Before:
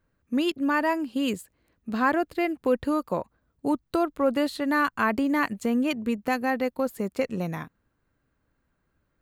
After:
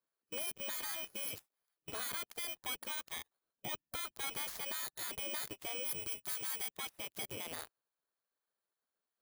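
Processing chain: FFT order left unsorted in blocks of 16 samples; spectral gate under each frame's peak -15 dB weak; 5.83–6.72 high shelf 4600 Hz +8.5 dB; sample leveller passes 3; limiter -24 dBFS, peak gain reduction 16 dB; gain -7 dB

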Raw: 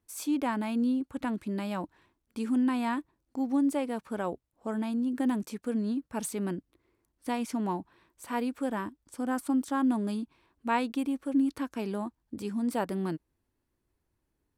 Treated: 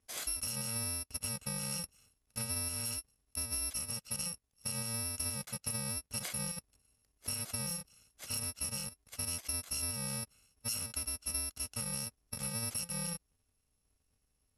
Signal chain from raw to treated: FFT order left unsorted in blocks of 128 samples; elliptic low-pass 12000 Hz, stop band 80 dB; compressor 5:1, threshold -38 dBFS, peak gain reduction 12 dB; gain +3 dB

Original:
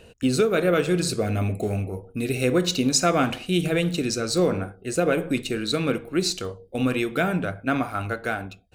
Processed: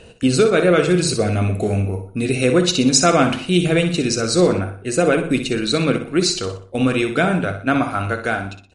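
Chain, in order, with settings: feedback echo 61 ms, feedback 41%, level -9.5 dB; gain +6 dB; MP3 48 kbps 44100 Hz

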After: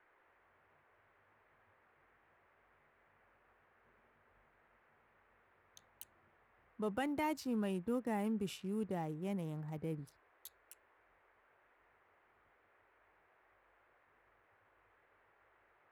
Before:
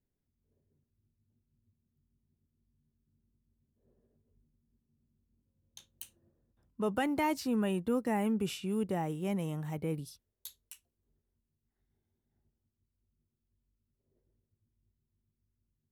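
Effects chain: Wiener smoothing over 15 samples; band noise 340–2000 Hz -66 dBFS; gain -6 dB

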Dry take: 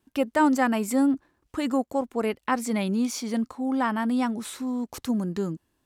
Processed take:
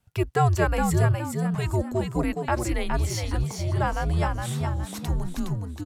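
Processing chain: frequency shift -170 Hz; frequency-shifting echo 0.415 s, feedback 34%, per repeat +66 Hz, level -5 dB

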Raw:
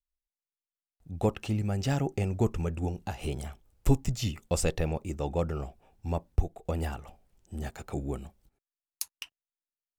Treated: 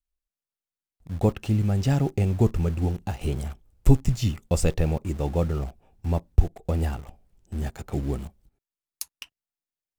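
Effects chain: low shelf 340 Hz +7.5 dB; in parallel at -9 dB: requantised 6-bit, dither none; on the sum: gain -2 dB

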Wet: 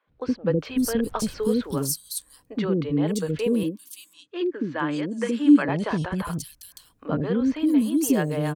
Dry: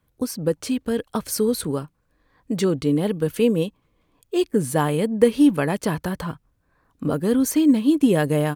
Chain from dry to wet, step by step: vocal rider within 4 dB 2 s; 0.67–1.41 added noise brown -42 dBFS; 3.56–5.62 speaker cabinet 240–6700 Hz, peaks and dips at 310 Hz +8 dB, 450 Hz -9 dB, 770 Hz -8 dB, 1600 Hz +4 dB; three bands offset in time mids, lows, highs 70/570 ms, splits 430/3700 Hz; gain -1.5 dB

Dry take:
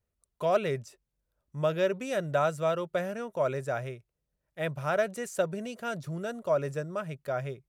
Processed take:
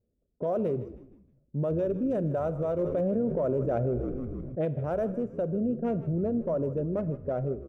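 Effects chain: Wiener smoothing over 41 samples; low-pass opened by the level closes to 2400 Hz, open at -25 dBFS; graphic EQ 250/500/2000/4000/8000 Hz +11/+7/-8/-12/-5 dB; limiter -25 dBFS, peak gain reduction 15.5 dB; frequency-shifting echo 0.157 s, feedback 43%, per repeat -68 Hz, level -15 dB; reverb RT60 0.90 s, pre-delay 32 ms, DRR 15 dB; 2.79–4.65 fast leveller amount 70%; gain +3 dB

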